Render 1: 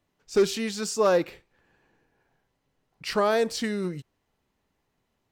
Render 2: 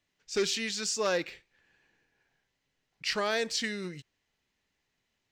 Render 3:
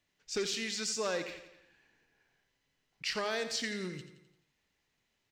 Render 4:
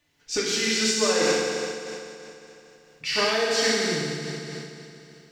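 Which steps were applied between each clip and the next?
band shelf 3500 Hz +10.5 dB 2.5 oct; gain -8.5 dB
compressor 2:1, threshold -35 dBFS, peak gain reduction 6.5 dB; feedback echo 86 ms, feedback 52%, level -11 dB
FDN reverb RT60 2.9 s, high-frequency decay 0.95×, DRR -7 dB; noise-modulated level, depth 50%; gain +7.5 dB

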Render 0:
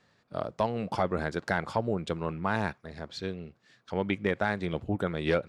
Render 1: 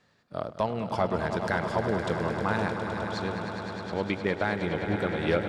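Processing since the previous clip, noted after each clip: swelling echo 0.103 s, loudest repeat 5, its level -10.5 dB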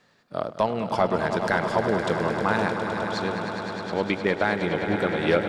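bell 76 Hz -9 dB 1.5 oct; gain +5 dB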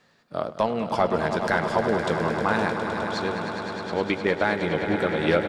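doubler 13 ms -11 dB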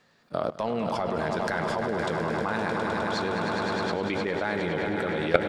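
level quantiser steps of 18 dB; gain +8 dB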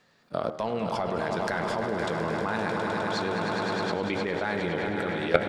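de-hum 77.69 Hz, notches 29

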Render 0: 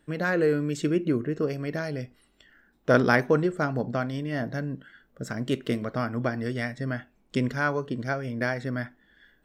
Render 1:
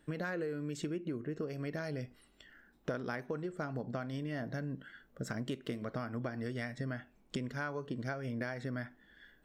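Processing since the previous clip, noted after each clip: compressor 12:1, threshold -33 dBFS, peak gain reduction 19.5 dB; gain -1.5 dB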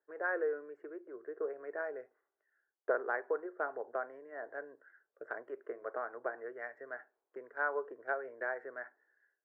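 elliptic band-pass 400–1700 Hz, stop band 40 dB; three-band expander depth 100%; gain +3.5 dB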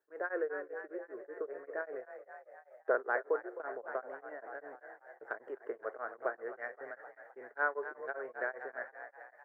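on a send: frequency-shifting echo 0.26 s, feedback 63%, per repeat +35 Hz, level -10.5 dB; on the sum: beating tremolo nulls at 5.1 Hz; gain +2.5 dB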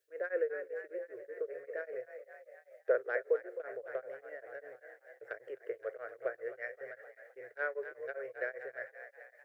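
EQ curve 130 Hz 0 dB, 200 Hz -27 dB, 520 Hz 0 dB, 920 Hz -23 dB, 2300 Hz +3 dB; gain +5 dB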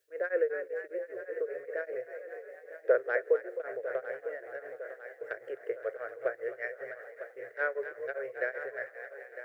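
thinning echo 0.953 s, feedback 58%, high-pass 220 Hz, level -12 dB; gain +4.5 dB

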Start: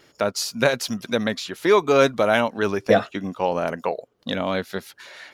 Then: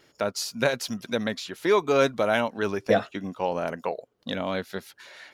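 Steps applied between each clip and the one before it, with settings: notch 1200 Hz, Q 28; gain -4.5 dB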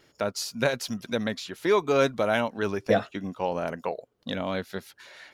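low shelf 120 Hz +5.5 dB; gain -1.5 dB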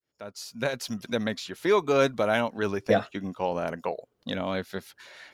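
opening faded in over 1.02 s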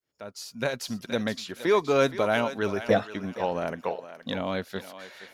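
thinning echo 0.47 s, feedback 31%, high-pass 560 Hz, level -11 dB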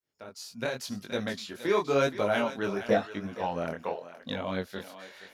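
chorus 0.91 Hz, delay 19.5 ms, depth 6.1 ms

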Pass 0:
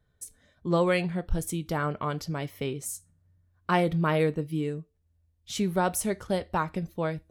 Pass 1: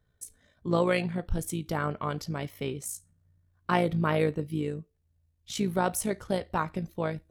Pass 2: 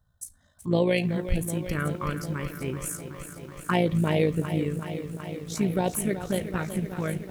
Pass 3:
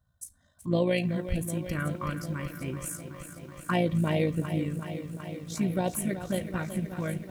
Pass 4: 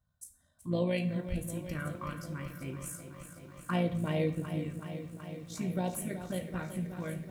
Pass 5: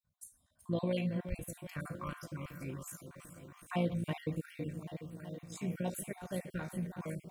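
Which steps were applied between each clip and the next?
AM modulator 56 Hz, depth 35%; gain +1 dB
envelope phaser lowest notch 390 Hz, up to 1300 Hz, full sweep at -22 dBFS; lo-fi delay 0.376 s, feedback 80%, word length 9-bit, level -11 dB; gain +4 dB
notch comb 430 Hz; gain -2 dB
plate-style reverb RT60 0.57 s, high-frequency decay 0.75×, DRR 7 dB; gain -6.5 dB
random spectral dropouts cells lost 31%; gain -2 dB

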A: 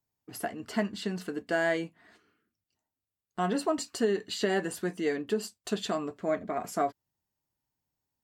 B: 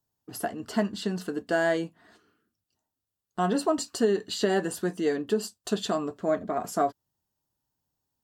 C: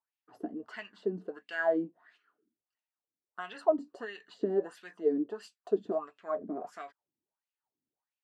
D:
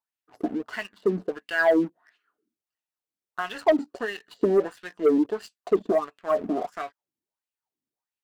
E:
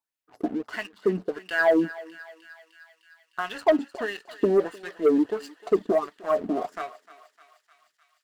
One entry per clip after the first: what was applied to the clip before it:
bell 2200 Hz -9.5 dB 0.45 oct; gain +3.5 dB
wah 1.5 Hz 270–2600 Hz, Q 4.3; gain +3 dB
sample leveller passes 2; gain +3 dB
thinning echo 0.304 s, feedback 78%, high-pass 1100 Hz, level -14 dB

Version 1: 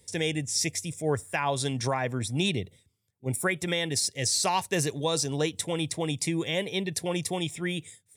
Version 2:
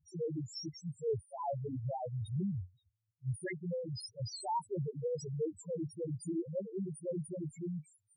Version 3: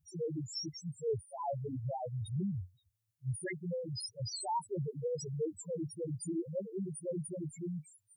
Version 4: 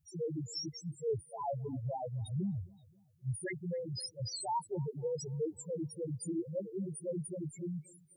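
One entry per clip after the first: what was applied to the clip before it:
loudest bins only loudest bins 1
high shelf 5100 Hz +8 dB
analogue delay 0.263 s, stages 4096, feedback 42%, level -24 dB

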